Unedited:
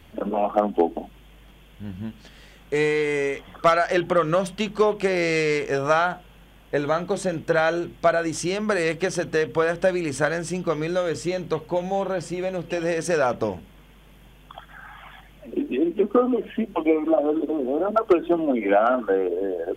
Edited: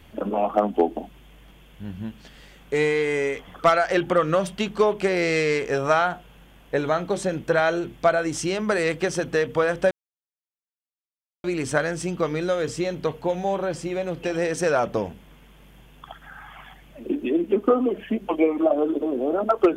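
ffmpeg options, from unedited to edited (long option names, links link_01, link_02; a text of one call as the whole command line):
ffmpeg -i in.wav -filter_complex "[0:a]asplit=2[link_01][link_02];[link_01]atrim=end=9.91,asetpts=PTS-STARTPTS,afade=type=out:start_time=9.906:duration=0.004:curve=hsin,apad=pad_dur=1.53[link_03];[link_02]atrim=start=9.91,asetpts=PTS-STARTPTS,afade=type=in:duration=0.004:curve=hsin[link_04];[link_03][link_04]concat=n=2:v=0:a=1" out.wav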